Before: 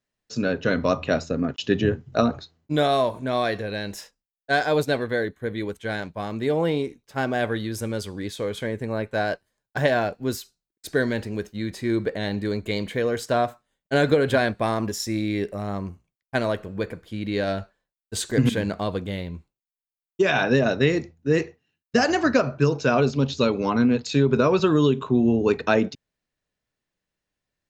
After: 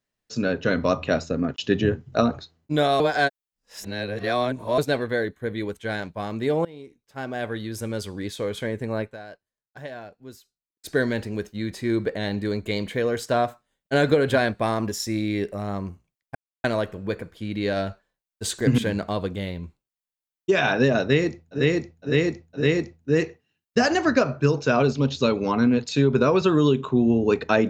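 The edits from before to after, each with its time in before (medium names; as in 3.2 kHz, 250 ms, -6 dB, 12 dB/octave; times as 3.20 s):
3.00–4.78 s: reverse
6.65–8.10 s: fade in, from -23.5 dB
9.01–10.89 s: dip -16 dB, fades 0.16 s
16.35 s: insert silence 0.29 s
20.79–21.30 s: loop, 4 plays, crossfade 0.16 s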